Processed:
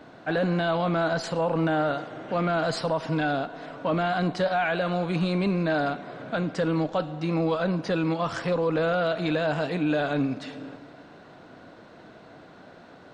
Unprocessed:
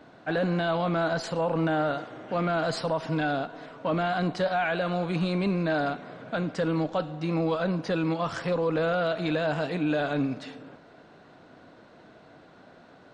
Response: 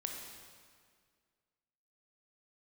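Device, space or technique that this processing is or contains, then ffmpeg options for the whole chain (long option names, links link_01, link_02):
ducked reverb: -filter_complex "[0:a]asplit=3[link_01][link_02][link_03];[1:a]atrim=start_sample=2205[link_04];[link_02][link_04]afir=irnorm=-1:irlink=0[link_05];[link_03]apad=whole_len=579363[link_06];[link_05][link_06]sidechaincompress=threshold=-40dB:ratio=8:attack=16:release=297,volume=-6dB[link_07];[link_01][link_07]amix=inputs=2:normalize=0,volume=1dB"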